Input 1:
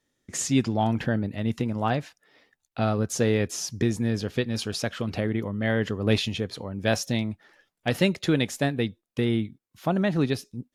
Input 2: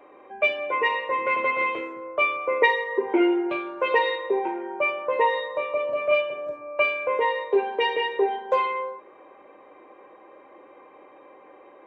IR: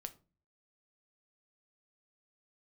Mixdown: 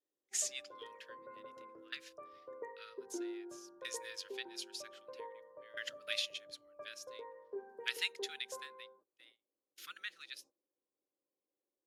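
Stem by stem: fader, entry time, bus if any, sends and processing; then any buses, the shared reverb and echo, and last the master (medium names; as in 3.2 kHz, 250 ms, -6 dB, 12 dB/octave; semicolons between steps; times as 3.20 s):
+0.5 dB, 0.00 s, no send, elliptic high-pass 1.3 kHz, stop band 50 dB; transient shaper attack +2 dB, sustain -6 dB; sawtooth tremolo in dB decaying 0.52 Hz, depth 28 dB
-17.0 dB, 0.00 s, no send, Chebyshev low-pass 1.6 kHz, order 5; level-controlled noise filter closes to 670 Hz, open at -18.5 dBFS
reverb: none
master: gate -59 dBFS, range -20 dB; peaking EQ 900 Hz -12 dB 1.9 oct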